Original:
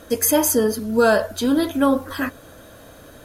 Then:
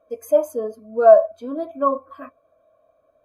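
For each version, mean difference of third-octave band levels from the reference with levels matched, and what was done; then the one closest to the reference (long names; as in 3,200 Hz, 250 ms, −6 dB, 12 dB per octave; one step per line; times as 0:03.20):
17.5 dB: hollow resonant body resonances 650/1,100/2,300 Hz, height 16 dB, ringing for 20 ms
every bin expanded away from the loudest bin 1.5 to 1
level −8 dB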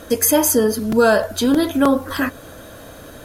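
2.0 dB: in parallel at −1 dB: downward compressor, threshold −24 dBFS, peak gain reduction 12.5 dB
on the sum: regular buffer underruns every 0.31 s, samples 128, repeat, from 0:00.92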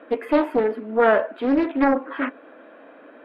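9.5 dB: elliptic band-pass filter 260–2,500 Hz, stop band 40 dB
highs frequency-modulated by the lows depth 0.45 ms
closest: second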